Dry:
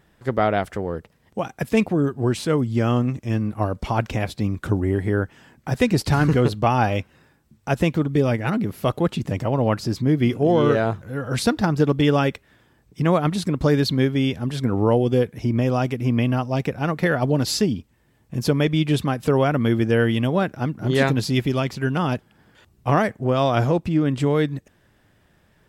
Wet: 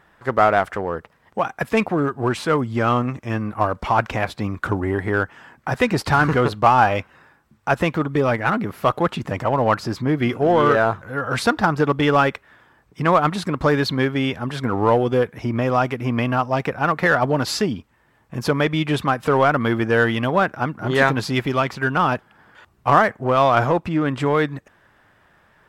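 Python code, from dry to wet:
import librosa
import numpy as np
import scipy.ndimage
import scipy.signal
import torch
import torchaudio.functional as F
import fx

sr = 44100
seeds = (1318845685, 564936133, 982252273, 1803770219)

p1 = fx.peak_eq(x, sr, hz=1200.0, db=14.0, octaves=2.2)
p2 = np.clip(10.0 ** (12.5 / 20.0) * p1, -1.0, 1.0) / 10.0 ** (12.5 / 20.0)
p3 = p1 + (p2 * librosa.db_to_amplitude(-7.0))
y = p3 * librosa.db_to_amplitude(-6.5)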